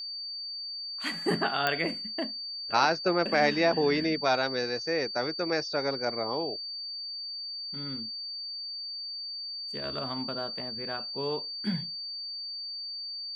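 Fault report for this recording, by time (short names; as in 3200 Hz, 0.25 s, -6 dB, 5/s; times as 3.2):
tone 4600 Hz -35 dBFS
1.67 pop -12 dBFS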